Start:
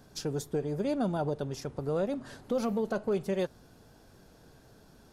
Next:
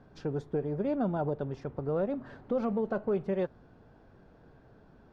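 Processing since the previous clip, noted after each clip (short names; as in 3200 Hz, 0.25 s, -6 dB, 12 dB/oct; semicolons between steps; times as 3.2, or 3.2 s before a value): LPF 1900 Hz 12 dB/oct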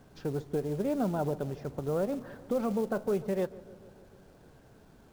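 companded quantiser 6-bit; darkening echo 0.148 s, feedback 69%, low-pass 1600 Hz, level -18.5 dB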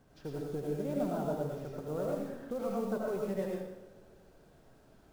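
digital reverb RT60 0.79 s, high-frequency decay 1×, pre-delay 50 ms, DRR -3 dB; gain -8 dB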